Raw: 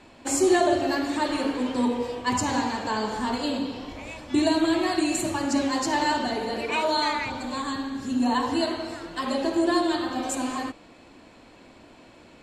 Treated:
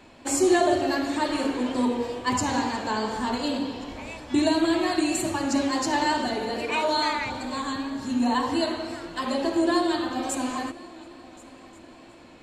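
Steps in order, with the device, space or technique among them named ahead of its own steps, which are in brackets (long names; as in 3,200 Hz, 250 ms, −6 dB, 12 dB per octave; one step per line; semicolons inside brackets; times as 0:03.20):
multi-head tape echo (echo machine with several playback heads 359 ms, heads first and third, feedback 53%, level −23 dB; tape wow and flutter 24 cents)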